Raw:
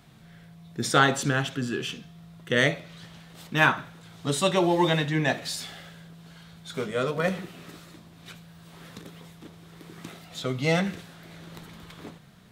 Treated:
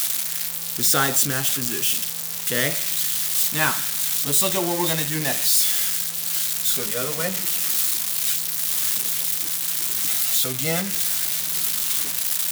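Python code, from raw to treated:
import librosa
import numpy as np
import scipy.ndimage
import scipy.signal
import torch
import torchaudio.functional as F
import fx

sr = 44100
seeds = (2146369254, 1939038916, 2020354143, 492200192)

y = x + 0.5 * 10.0 ** (-12.5 / 20.0) * np.diff(np.sign(x), prepend=np.sign(x[:1]))
y = fx.high_shelf(y, sr, hz=5600.0, db=4.0)
y = y * 10.0 ** (-2.5 / 20.0)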